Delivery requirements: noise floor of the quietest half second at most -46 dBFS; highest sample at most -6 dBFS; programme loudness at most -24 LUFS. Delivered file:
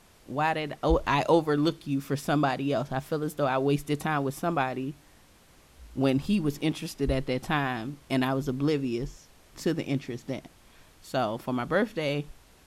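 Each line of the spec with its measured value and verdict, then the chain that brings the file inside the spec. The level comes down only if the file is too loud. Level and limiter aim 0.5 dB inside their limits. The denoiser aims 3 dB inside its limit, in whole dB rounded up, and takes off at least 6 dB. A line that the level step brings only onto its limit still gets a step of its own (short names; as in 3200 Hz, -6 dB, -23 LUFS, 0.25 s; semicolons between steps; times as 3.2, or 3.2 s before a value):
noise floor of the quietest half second -57 dBFS: OK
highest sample -9.5 dBFS: OK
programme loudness -28.5 LUFS: OK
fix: none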